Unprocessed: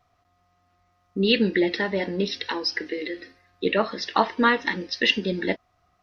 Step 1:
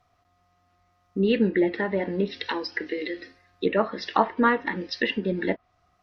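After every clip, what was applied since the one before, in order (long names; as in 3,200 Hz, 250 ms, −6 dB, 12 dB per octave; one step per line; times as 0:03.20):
treble cut that deepens with the level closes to 1,700 Hz, closed at −21 dBFS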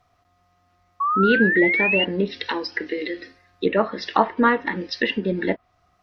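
sound drawn into the spectrogram rise, 0:01.00–0:02.05, 1,100–2,900 Hz −24 dBFS
level +3 dB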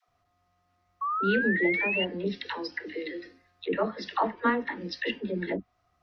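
all-pass dispersion lows, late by 86 ms, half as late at 410 Hz
level −8 dB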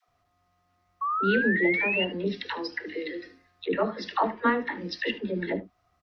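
single-tap delay 74 ms −16 dB
level +1.5 dB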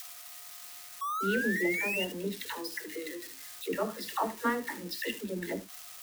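spike at every zero crossing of −28 dBFS
level −6 dB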